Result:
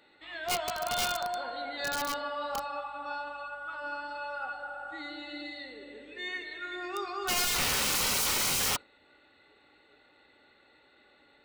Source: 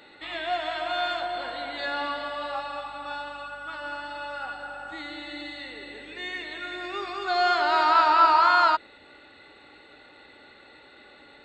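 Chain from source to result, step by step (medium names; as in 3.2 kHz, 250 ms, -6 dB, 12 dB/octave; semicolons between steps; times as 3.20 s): integer overflow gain 21.5 dB; spectral noise reduction 9 dB; trim -2 dB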